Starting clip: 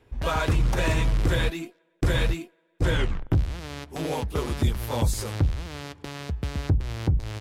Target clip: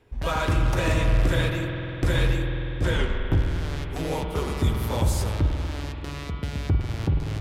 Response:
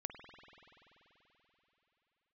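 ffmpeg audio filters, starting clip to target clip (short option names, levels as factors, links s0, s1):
-filter_complex "[1:a]atrim=start_sample=2205[s0];[0:a][s0]afir=irnorm=-1:irlink=0,volume=1.5"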